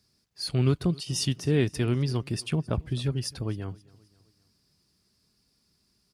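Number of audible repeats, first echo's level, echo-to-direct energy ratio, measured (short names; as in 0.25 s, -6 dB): 2, -24.0 dB, -23.0 dB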